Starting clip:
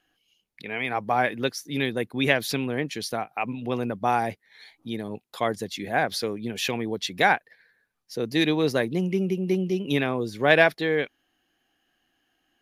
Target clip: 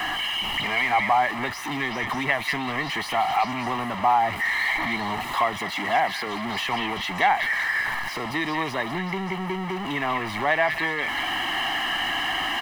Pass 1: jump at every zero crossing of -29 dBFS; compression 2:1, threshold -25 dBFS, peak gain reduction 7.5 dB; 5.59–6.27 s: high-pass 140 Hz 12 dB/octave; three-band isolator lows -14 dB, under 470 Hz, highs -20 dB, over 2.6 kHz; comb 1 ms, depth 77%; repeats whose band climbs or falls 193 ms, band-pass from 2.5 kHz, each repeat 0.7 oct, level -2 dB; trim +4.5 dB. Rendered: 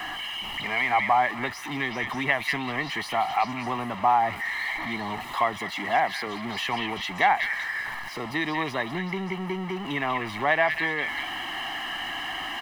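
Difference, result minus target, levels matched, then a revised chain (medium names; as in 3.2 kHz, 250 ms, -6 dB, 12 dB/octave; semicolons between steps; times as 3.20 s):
jump at every zero crossing: distortion -5 dB
jump at every zero crossing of -22.5 dBFS; compression 2:1, threshold -25 dBFS, peak gain reduction 8 dB; 5.59–6.27 s: high-pass 140 Hz 12 dB/octave; three-band isolator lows -14 dB, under 470 Hz, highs -20 dB, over 2.6 kHz; comb 1 ms, depth 77%; repeats whose band climbs or falls 193 ms, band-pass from 2.5 kHz, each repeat 0.7 oct, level -2 dB; trim +4.5 dB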